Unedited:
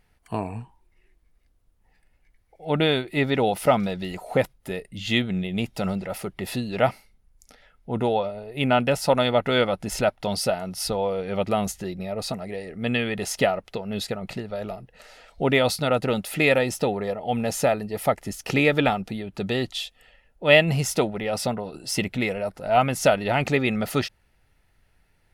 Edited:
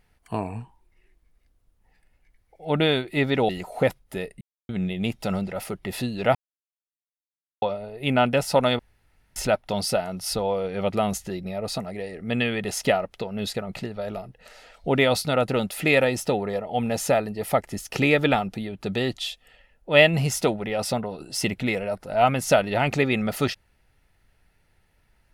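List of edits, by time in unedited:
0:03.49–0:04.03: remove
0:04.95–0:05.23: silence
0:06.89–0:08.16: silence
0:09.33–0:09.90: fill with room tone

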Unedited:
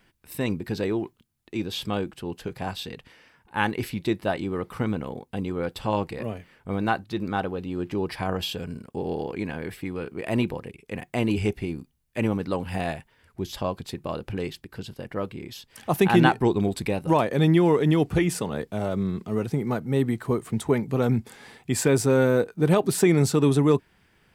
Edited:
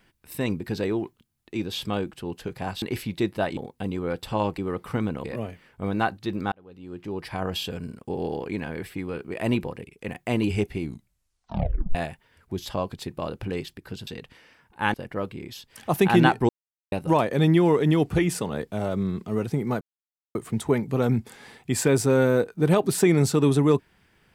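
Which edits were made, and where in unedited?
0:02.82–0:03.69: move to 0:14.94
0:04.44–0:05.10: move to 0:06.11
0:07.39–0:08.48: fade in linear
0:11.67: tape stop 1.15 s
0:16.49–0:16.92: silence
0:19.81–0:20.35: silence

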